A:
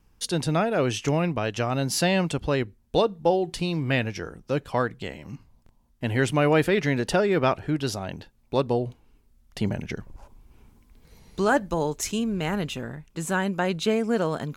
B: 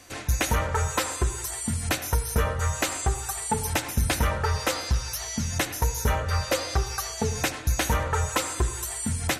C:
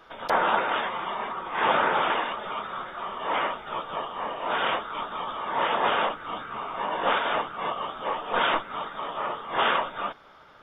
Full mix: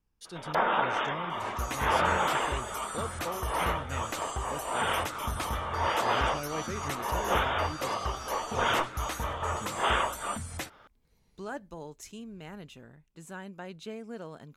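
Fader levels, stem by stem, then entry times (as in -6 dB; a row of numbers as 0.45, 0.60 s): -17.0, -11.0, -3.5 dB; 0.00, 1.30, 0.25 s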